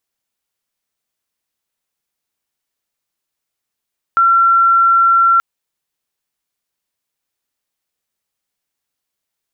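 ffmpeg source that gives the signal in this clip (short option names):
-f lavfi -i "aevalsrc='0.422*sin(2*PI*1360*t)':d=1.23:s=44100"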